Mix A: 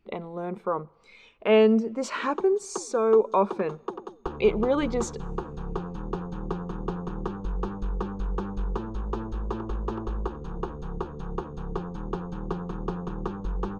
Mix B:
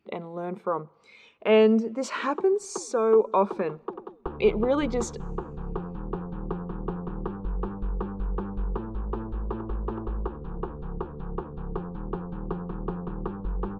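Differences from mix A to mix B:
speech: add high-pass 110 Hz; background: add distance through air 410 m

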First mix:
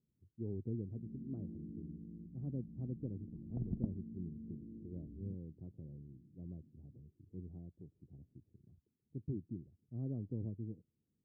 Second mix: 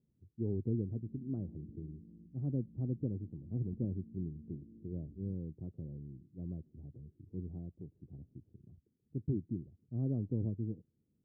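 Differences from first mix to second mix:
speech +6.0 dB; first sound -5.5 dB; second sound -11.5 dB

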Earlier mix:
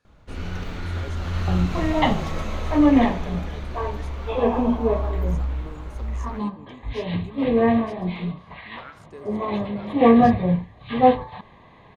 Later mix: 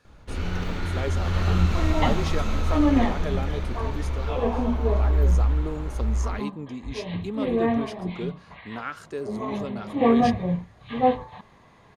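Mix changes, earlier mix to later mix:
speech +9.5 dB; first sound: send +9.5 dB; second sound -5.0 dB

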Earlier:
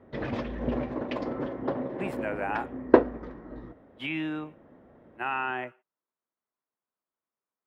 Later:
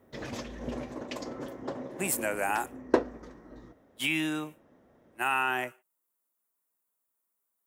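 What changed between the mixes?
background -7.5 dB; master: remove distance through air 370 m

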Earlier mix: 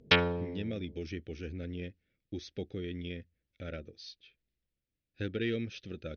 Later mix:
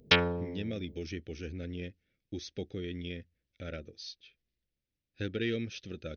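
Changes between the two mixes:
background: send -8.5 dB; master: remove distance through air 99 m

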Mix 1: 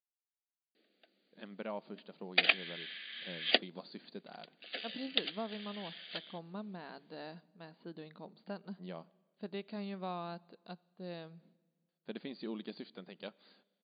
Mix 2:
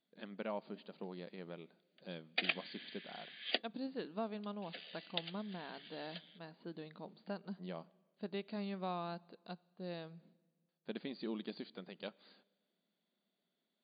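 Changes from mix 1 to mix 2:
speech: entry -1.20 s; background -8.0 dB

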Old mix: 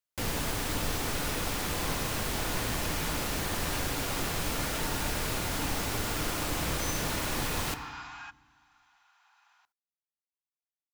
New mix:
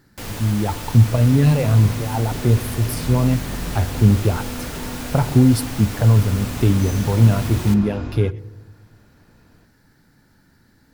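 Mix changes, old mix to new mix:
speech: unmuted; second sound: remove steep high-pass 760 Hz 96 dB/octave

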